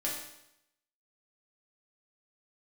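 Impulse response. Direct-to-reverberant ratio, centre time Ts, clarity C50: -5.5 dB, 48 ms, 3.0 dB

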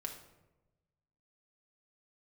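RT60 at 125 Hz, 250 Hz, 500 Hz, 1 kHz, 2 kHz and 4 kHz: 1.6, 1.3, 1.2, 0.95, 0.75, 0.55 s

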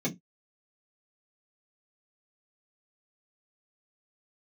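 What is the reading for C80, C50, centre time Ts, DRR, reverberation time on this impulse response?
30.0 dB, 18.5 dB, 12 ms, -5.0 dB, not exponential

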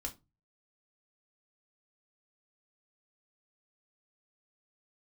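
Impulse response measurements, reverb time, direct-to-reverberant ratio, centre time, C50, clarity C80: 0.25 s, 2.0 dB, 10 ms, 17.0 dB, 25.0 dB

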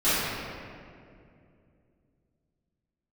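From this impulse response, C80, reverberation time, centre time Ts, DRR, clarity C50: -2.0 dB, 2.4 s, 0.162 s, -16.0 dB, -5.0 dB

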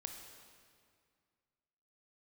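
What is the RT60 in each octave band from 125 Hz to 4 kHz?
2.5, 2.4, 2.1, 2.1, 1.9, 1.7 s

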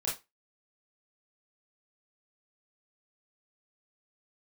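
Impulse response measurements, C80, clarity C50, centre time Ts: 17.0 dB, 7.5 dB, 32 ms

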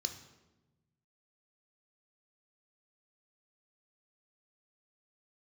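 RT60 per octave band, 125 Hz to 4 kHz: 1.9, 1.6, 1.3, 0.95, 0.85, 0.75 s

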